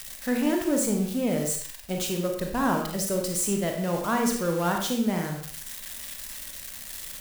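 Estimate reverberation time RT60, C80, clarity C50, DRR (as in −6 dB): non-exponential decay, 8.0 dB, 4.5 dB, 1.5 dB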